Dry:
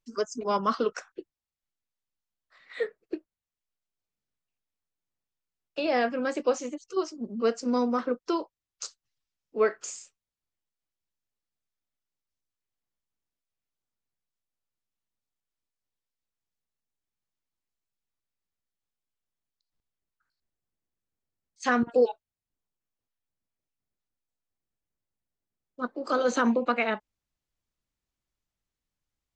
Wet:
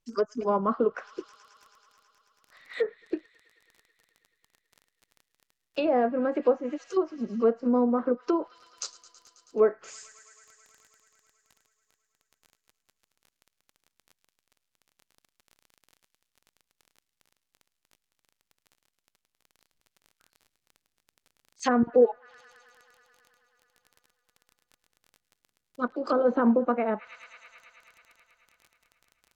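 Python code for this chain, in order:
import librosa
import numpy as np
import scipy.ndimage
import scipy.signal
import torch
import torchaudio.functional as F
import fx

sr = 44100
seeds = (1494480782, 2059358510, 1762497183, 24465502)

y = fx.dmg_crackle(x, sr, seeds[0], per_s=21.0, level_db=-44.0)
y = fx.echo_wet_highpass(y, sr, ms=108, feedback_pct=84, hz=1800.0, wet_db=-19.5)
y = fx.env_lowpass_down(y, sr, base_hz=910.0, full_db=-24.0)
y = y * librosa.db_to_amplitude(3.0)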